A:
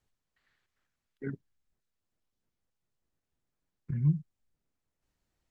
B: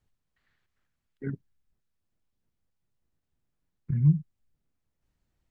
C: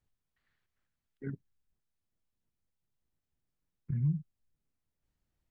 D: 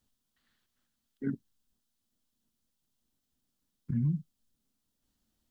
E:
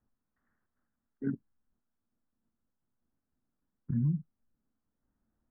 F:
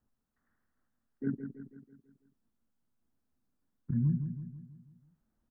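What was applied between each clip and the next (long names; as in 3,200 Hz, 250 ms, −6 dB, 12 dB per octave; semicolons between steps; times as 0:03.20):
bass and treble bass +6 dB, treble −3 dB
brickwall limiter −17.5 dBFS, peak gain reduction 5.5 dB; level −5.5 dB
drawn EQ curve 160 Hz 0 dB, 230 Hz +13 dB, 380 Hz +3 dB, 1,400 Hz +4 dB, 2,300 Hz 0 dB, 3,200 Hz +10 dB
Butterworth low-pass 1,700 Hz
repeating echo 164 ms, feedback 51%, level −8.5 dB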